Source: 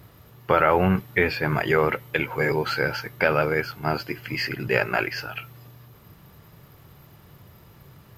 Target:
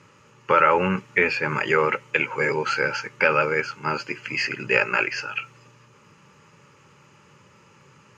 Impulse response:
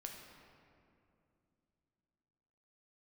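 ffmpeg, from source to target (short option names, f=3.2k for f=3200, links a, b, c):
-af "asuperstop=centerf=700:order=8:qfactor=3.5,highpass=190,equalizer=f=310:t=q:w=4:g=-4,equalizer=f=730:t=q:w=4:g=5,equalizer=f=1.3k:t=q:w=4:g=4,equalizer=f=2.6k:t=q:w=4:g=9,equalizer=f=3.7k:t=q:w=4:g=-9,equalizer=f=6.6k:t=q:w=4:g=10,lowpass=f=7.6k:w=0.5412,lowpass=f=7.6k:w=1.3066"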